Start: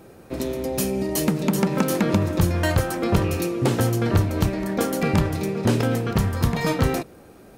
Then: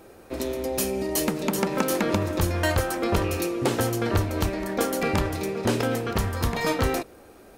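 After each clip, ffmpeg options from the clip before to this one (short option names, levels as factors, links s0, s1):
-af "equalizer=f=150:t=o:w=1.2:g=-10.5"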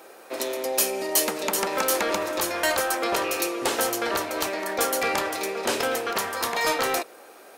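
-filter_complex "[0:a]highpass=560,acrossover=split=4400[s0][s1];[s0]asoftclip=type=tanh:threshold=0.0631[s2];[s2][s1]amix=inputs=2:normalize=0,volume=2"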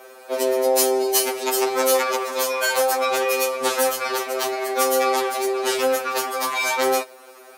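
-af "highpass=250,afftfilt=real='re*2.45*eq(mod(b,6),0)':imag='im*2.45*eq(mod(b,6),0)':win_size=2048:overlap=0.75,volume=1.78"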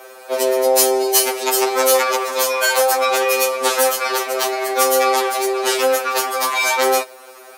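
-af "bass=f=250:g=-12,treble=f=4000:g=1,acontrast=21"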